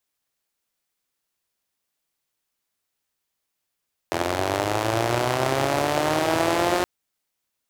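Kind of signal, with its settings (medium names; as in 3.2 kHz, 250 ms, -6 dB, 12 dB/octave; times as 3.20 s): four-cylinder engine model, changing speed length 2.72 s, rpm 2500, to 5400, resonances 120/350/600 Hz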